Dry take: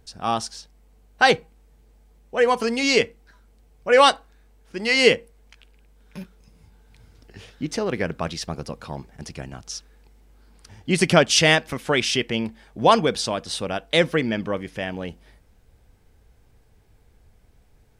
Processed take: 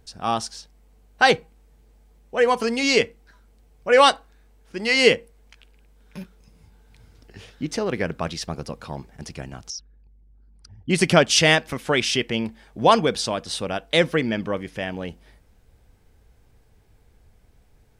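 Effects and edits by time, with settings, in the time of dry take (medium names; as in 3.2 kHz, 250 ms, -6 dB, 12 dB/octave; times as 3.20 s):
9.70–10.90 s: resonances exaggerated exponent 2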